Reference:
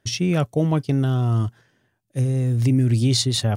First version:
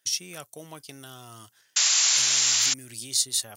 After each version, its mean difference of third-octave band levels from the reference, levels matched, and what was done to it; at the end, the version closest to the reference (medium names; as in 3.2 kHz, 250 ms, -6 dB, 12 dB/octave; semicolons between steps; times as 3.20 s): 12.5 dB: dynamic bell 2.9 kHz, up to -6 dB, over -38 dBFS, Q 0.85; painted sound noise, 1.76–2.74 s, 600–7500 Hz -21 dBFS; in parallel at +3 dB: compression, threshold -26 dBFS, peak gain reduction 12.5 dB; on the sum: differentiator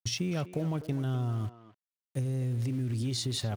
3.5 dB: peak limiter -15 dBFS, peak gain reduction 5.5 dB; compression 10:1, threshold -24 dBFS, peak gain reduction 6.5 dB; small samples zeroed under -43 dBFS; speakerphone echo 250 ms, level -11 dB; trim -4 dB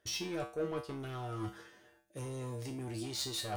9.5 dB: resonant low shelf 280 Hz -7.5 dB, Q 1.5; reverse; compression 12:1, threshold -35 dBFS, peak gain reduction 19 dB; reverse; saturation -37.5 dBFS, distortion -12 dB; feedback comb 67 Hz, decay 0.36 s, harmonics odd, mix 90%; trim +15.5 dB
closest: second